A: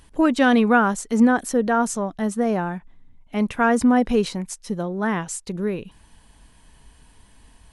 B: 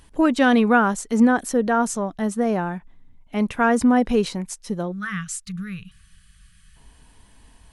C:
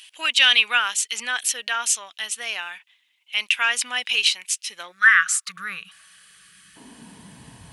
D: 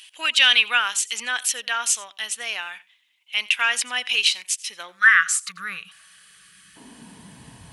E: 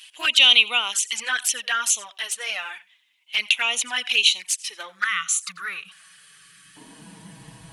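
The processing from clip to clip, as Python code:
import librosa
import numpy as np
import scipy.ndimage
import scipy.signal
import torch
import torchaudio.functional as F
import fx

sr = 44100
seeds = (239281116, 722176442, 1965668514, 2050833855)

y1 = fx.spec_box(x, sr, start_s=4.92, length_s=1.84, low_hz=200.0, high_hz=1100.0, gain_db=-27)
y2 = fx.filter_sweep_highpass(y1, sr, from_hz=2800.0, to_hz=120.0, start_s=4.62, end_s=7.56, q=3.8)
y2 = F.gain(torch.from_numpy(y2), 8.5).numpy()
y3 = y2 + 10.0 ** (-21.5 / 20.0) * np.pad(y2, (int(88 * sr / 1000.0), 0))[:len(y2)]
y4 = fx.env_flanger(y3, sr, rest_ms=7.8, full_db=-18.5)
y4 = F.gain(torch.from_numpy(y4), 3.5).numpy()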